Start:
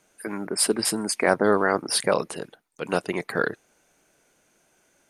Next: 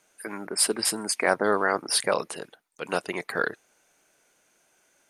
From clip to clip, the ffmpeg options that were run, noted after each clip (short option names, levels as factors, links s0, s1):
-af "lowshelf=f=390:g=-9"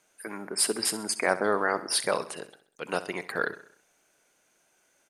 -af "aecho=1:1:65|130|195|260|325:0.178|0.0871|0.0427|0.0209|0.0103,volume=0.75"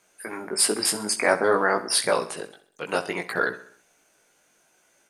-af "flanger=delay=16:depth=3.9:speed=0.56,volume=2.37"